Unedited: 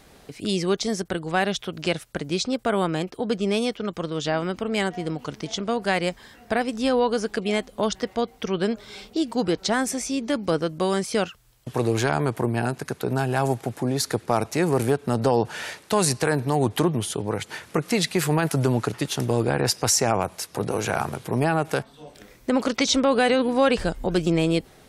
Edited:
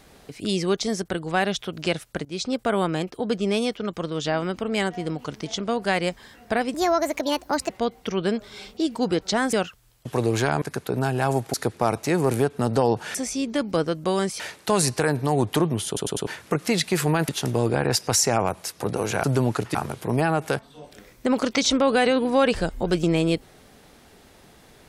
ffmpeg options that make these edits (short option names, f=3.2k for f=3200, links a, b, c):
-filter_complex "[0:a]asplit=16[a][b][c][d][e][f][g][h][i][j][k][l][m][n][o][p];[a]atrim=end=2.25,asetpts=PTS-STARTPTS,afade=t=out:st=2.246:d=0.004:c=hsin:silence=0.0944061[q];[b]atrim=start=2.25:end=6.744,asetpts=PTS-STARTPTS,afade=t=in:d=0.34:c=qsin:silence=0.0944061[r];[c]atrim=start=6.74:end=8.06,asetpts=PTS-STARTPTS,asetrate=60858,aresample=44100[s];[d]atrim=start=8.056:end=9.892[t];[e]atrim=start=11.138:end=12.232[u];[f]atrim=start=12.758:end=13.682[v];[g]atrim=start=14.018:end=15.632[w];[h]atrim=start=9.888:end=11.142[x];[i]atrim=start=15.628:end=17.202[y];[j]atrim=start=17.098:end=17.202[z];[k]atrim=start=17.098:end=17.202[aa];[l]atrim=start=17.098:end=17.202[ab];[m]atrim=start=17.498:end=18.522[ac];[n]atrim=start=19.028:end=20.982[ad];[o]atrim=start=18.518:end=19.032[ae];[p]atrim=start=20.978[af];[q][r]concat=n=2:v=0:a=1[ag];[ag][s]acrossfade=d=0.004:c1=hsin:c2=hsin[ah];[ah][t]acrossfade=d=0.004:c1=hsin:c2=hsin[ai];[ai][u]acrossfade=d=0.004:c1=hsin:c2=hsin[aj];[aj][v]acrossfade=d=0.004:c1=hsin:c2=hsin[ak];[ak][w]acrossfade=d=0.004:c1=hsin:c2=hsin[al];[al][x]acrossfade=d=0.004:c1=hsin:c2=hsin[am];[am][y]acrossfade=d=0.004:c1=hsin:c2=hsin[an];[an][z]acrossfade=d=0.004:c1=hsin:c2=hsin[ao];[ao][aa]acrossfade=d=0.004:c1=hsin:c2=hsin[ap];[ap][ab]acrossfade=d=0.004:c1=hsin:c2=hsin[aq];[aq][ac]acrossfade=d=0.004:c1=hsin:c2=hsin[ar];[ar][ad]acrossfade=d=0.004:c1=hsin:c2=hsin[as];[as][ae]acrossfade=d=0.004:c1=hsin:c2=hsin[at];[at][af]acrossfade=d=0.004:c1=hsin:c2=hsin"